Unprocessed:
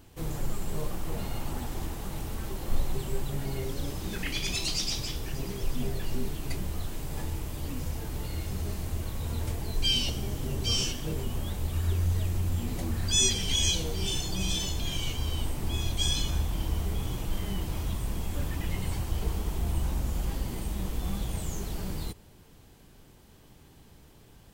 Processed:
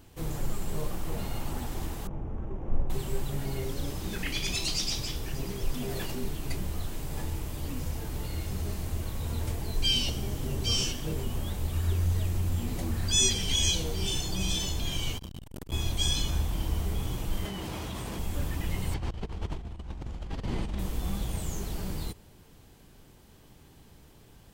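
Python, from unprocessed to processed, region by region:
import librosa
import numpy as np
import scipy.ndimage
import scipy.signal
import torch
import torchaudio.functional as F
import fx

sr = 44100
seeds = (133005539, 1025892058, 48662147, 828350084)

y = fx.chain(x, sr, fx.median_filter(points=25),
    fx.moving_average(points=10), at=(2.07, 2.9))
y = fx.chain(y, sr, fx.low_shelf(hz=120.0, db=-10.0),
    fx.env_flatten(amount_pct=100), at=(5.74, 6.24))
y = fx.chain(y, sr, fx.over_compress(threshold_db=-33.0, ratio=-0.5),
    fx.transformer_sat(knee_hz=350.0), at=(15.18, 15.72))
y = fx.chain(y, sr, fx.highpass(hz=230.0, slope=6),
    fx.high_shelf(hz=8900.0, db=-10.0),
    fx.env_flatten(amount_pct=100), at=(17.45, 18.19))
y = fx.chain(y, sr, fx.lowpass(hz=4100.0, slope=12),
    fx.over_compress(threshold_db=-33.0, ratio=-0.5), at=(18.94, 20.79))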